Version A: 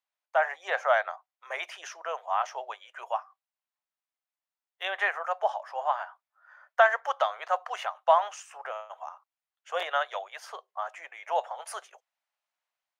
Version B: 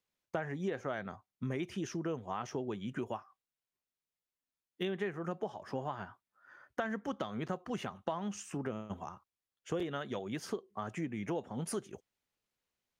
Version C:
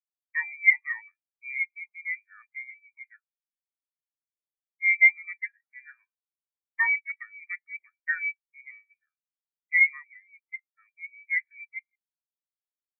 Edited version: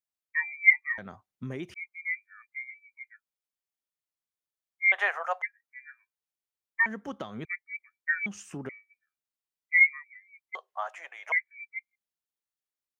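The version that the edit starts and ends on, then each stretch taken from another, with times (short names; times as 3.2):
C
0.98–1.74 from B
4.92–5.42 from A
6.86–7.45 from B
8.26–8.69 from B
10.55–11.32 from A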